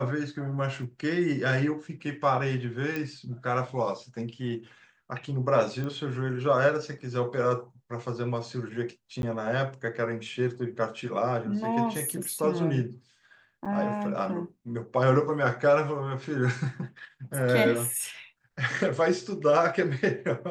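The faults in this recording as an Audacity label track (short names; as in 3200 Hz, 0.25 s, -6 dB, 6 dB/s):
0.830000	0.830000	gap 2.3 ms
2.960000	2.960000	pop -19 dBFS
5.840000	5.840000	pop -23 dBFS
9.220000	9.230000	gap 11 ms
13.650000	13.660000	gap 6.5 ms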